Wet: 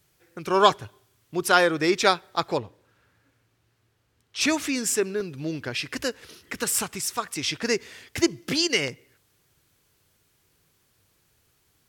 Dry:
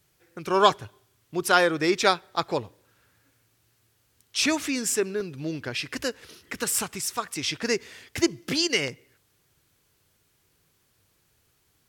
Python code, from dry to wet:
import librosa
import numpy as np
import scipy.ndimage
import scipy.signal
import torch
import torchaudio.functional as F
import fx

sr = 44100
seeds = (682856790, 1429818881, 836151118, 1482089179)

y = fx.lowpass(x, sr, hz=fx.line((2.57, 3600.0), (4.4, 2000.0)), slope=6, at=(2.57, 4.4), fade=0.02)
y = F.gain(torch.from_numpy(y), 1.0).numpy()